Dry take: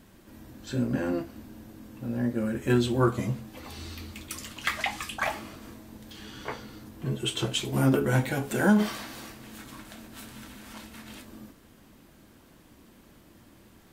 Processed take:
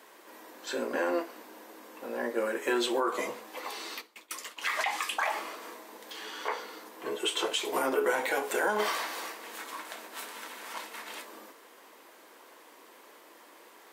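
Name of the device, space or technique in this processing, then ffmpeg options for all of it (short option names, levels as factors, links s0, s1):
laptop speaker: -filter_complex "[0:a]highpass=f=390:w=0.5412,highpass=f=390:w=1.3066,equalizer=f=1000:t=o:w=0.55:g=7,equalizer=f=2000:t=o:w=0.46:g=4,alimiter=limit=0.075:level=0:latency=1:release=109,equalizer=f=460:t=o:w=0.28:g=4.5,asplit=3[s0][s1][s2];[s0]afade=t=out:st=4:d=0.02[s3];[s1]agate=range=0.0224:threshold=0.0178:ratio=3:detection=peak,afade=t=in:st=4:d=0.02,afade=t=out:st=4.61:d=0.02[s4];[s2]afade=t=in:st=4.61:d=0.02[s5];[s3][s4][s5]amix=inputs=3:normalize=0,volume=1.5"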